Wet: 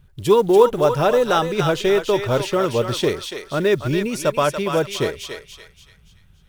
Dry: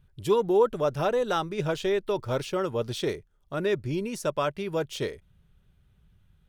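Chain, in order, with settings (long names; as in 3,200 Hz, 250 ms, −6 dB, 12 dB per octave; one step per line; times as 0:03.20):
on a send: feedback echo with a high-pass in the loop 286 ms, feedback 41%, high-pass 1,000 Hz, level −4 dB
on the sum: floating-point word with a short mantissa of 4 bits
level +8.5 dB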